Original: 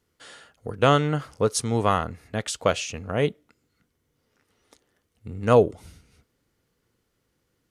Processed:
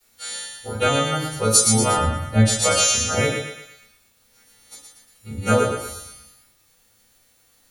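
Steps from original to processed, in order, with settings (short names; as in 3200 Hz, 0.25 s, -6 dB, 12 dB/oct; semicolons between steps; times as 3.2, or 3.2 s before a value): frequency quantiser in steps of 2 st; compressor, threshold -21 dBFS, peak gain reduction 10 dB; high shelf 2500 Hz +6.5 dB; thinning echo 0.117 s, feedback 51%, high-pass 600 Hz, level -4 dB; bit-crush 10-bit; 1.96–2.62 tilt -2.5 dB/oct; reverb RT60 0.35 s, pre-delay 4 ms, DRR -6.5 dB; gain -5 dB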